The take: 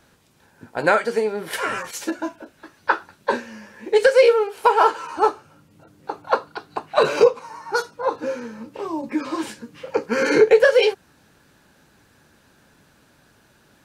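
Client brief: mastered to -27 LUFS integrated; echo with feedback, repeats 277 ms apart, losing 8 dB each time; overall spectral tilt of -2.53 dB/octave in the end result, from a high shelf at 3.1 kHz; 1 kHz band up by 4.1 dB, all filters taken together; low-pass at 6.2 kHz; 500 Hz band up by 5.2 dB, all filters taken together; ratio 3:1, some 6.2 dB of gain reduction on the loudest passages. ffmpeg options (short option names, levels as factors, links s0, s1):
-af "lowpass=6200,equalizer=f=500:t=o:g=5,equalizer=f=1000:t=o:g=4,highshelf=f=3100:g=-4.5,acompressor=threshold=0.251:ratio=3,aecho=1:1:277|554|831|1108|1385:0.398|0.159|0.0637|0.0255|0.0102,volume=0.422"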